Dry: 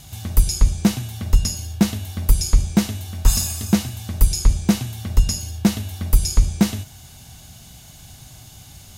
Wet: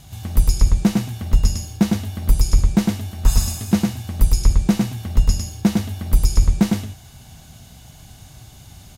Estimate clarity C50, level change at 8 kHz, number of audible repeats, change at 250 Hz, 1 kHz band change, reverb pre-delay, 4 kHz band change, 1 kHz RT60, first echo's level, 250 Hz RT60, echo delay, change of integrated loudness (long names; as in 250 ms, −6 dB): no reverb audible, −4.0 dB, 1, +1.5 dB, +1.0 dB, no reverb audible, −3.0 dB, no reverb audible, −3.5 dB, no reverb audible, 105 ms, +1.0 dB